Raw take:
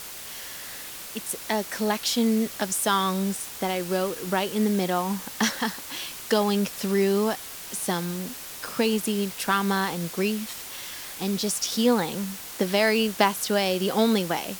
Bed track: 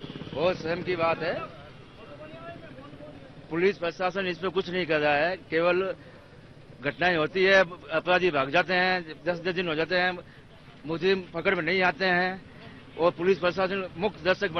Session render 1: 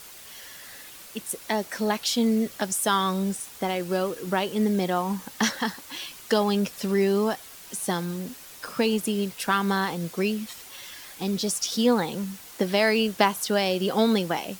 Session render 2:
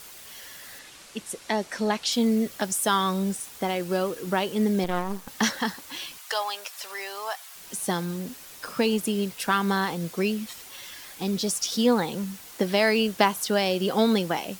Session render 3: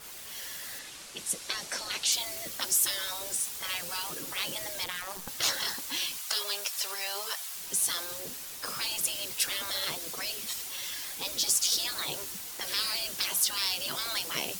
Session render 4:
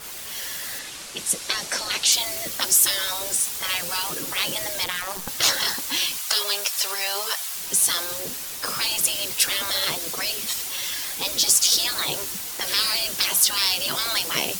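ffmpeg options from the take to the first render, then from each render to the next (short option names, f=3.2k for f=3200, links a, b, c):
-af "afftdn=nr=7:nf=-39"
-filter_complex "[0:a]asettb=1/sr,asplit=3[a][b][c];[a]atrim=end=0.794[d];[b]atrim=start=0.79:end=2.12,asetpts=PTS-STARTPTS,afade=t=in:d=0.004:c=qsin,afade=t=out:st=1.326:d=0.004:c=qsin,lowpass=8.7k[e];[c]atrim=start=2.116[f];[d][e]acrossfade=d=0.004:c1=hsin:c2=qsin[g];[g][f]acrossfade=d=0.004:c1=qsin:c2=hsin,asettb=1/sr,asplit=3[h][i][j];[h]atrim=end=4.844[k];[i]atrim=start=4.84:end=5.28,asetpts=PTS-STARTPTS,afade=t=in:d=0.004:c=qsin,afade=t=out:st=0.436:d=0.004:c=qsin,aeval=exprs='max(val(0),0)':c=same[l];[j]atrim=start=5.276[m];[k][l]acrossfade=d=0.004:c1=hsin:c2=qsin[n];[n][m]acrossfade=d=0.004:c1=qsin:c2=hsin,asettb=1/sr,asplit=3[o][p][q];[o]atrim=end=6.184[r];[p]atrim=start=6.18:end=7.56,asetpts=PTS-STARTPTS,afade=t=in:d=0.004:c=qsin,afade=t=out:st=1.376:d=0.004:c=qsin,highpass=f=700:w=0.5412,highpass=f=700:w=1.3066[s];[q]atrim=start=7.556[t];[r][s]acrossfade=d=0.004:c1=hsin:c2=qsin[u];[u][t]acrossfade=d=0.004:c1=qsin:c2=hsin"
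-af "afftfilt=real='re*lt(hypot(re,im),0.0891)':imag='im*lt(hypot(re,im),0.0891)':win_size=1024:overlap=0.75,adynamicequalizer=threshold=0.00398:dfrequency=2900:dqfactor=0.7:tfrequency=2900:tqfactor=0.7:attack=5:release=100:ratio=0.375:range=3.5:mode=boostabove:tftype=highshelf"
-af "volume=8.5dB"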